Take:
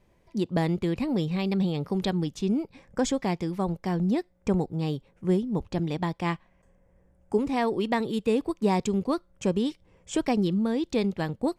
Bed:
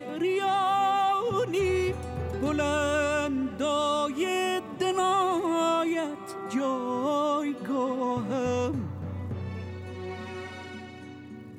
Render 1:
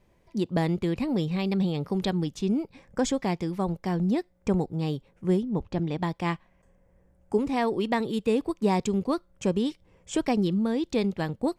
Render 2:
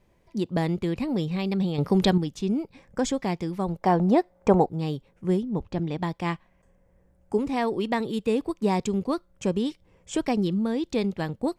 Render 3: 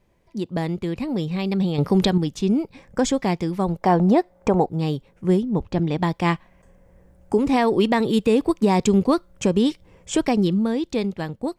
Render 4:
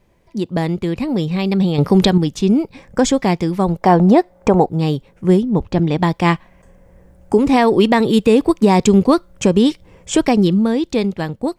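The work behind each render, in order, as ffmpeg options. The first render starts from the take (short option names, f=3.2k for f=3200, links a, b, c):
-filter_complex "[0:a]asettb=1/sr,asplit=3[a][b][c];[a]atrim=end=5.434[d];[b]atrim=start=5.43:end=5.99,asetpts=PTS-STARTPTS,afade=t=in:d=0.004:c=qsin,afade=t=out:st=0.556:d=0.004:c=qsin,lowpass=f=3.4k:p=1[e];[c]atrim=start=5.986[f];[d][e]acrossfade=d=0.004:c1=hsin:c2=qsin[g];[g][f]acrossfade=d=0.004:c1=qsin:c2=hsin"
-filter_complex "[0:a]asettb=1/sr,asplit=3[a][b][c];[a]atrim=end=1.784[d];[b]atrim=start=1.78:end=2.18,asetpts=PTS-STARTPTS,afade=t=in:d=0.004:c=qsin,afade=t=out:st=0.396:d=0.004:c=qsin,acontrast=76[e];[c]atrim=start=2.176[f];[d][e]acrossfade=d=0.004:c1=hsin:c2=qsin[g];[g][f]acrossfade=d=0.004:c1=qsin:c2=hsin,asettb=1/sr,asplit=3[h][i][j];[h]atrim=end=3.814[k];[i]atrim=start=3.81:end=4.69,asetpts=PTS-STARTPTS,afade=t=in:d=0.004:c=qsin,afade=t=out:st=0.876:d=0.004:c=qsin,equalizer=f=760:w=0.65:g=14[l];[j]atrim=start=4.686[m];[k][l]acrossfade=d=0.004:c1=hsin:c2=qsin[n];[n][m]acrossfade=d=0.004:c1=qsin:c2=hsin"
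-af "dynaudnorm=f=240:g=13:m=11.5dB,alimiter=limit=-8dB:level=0:latency=1:release=147"
-af "volume=6dB"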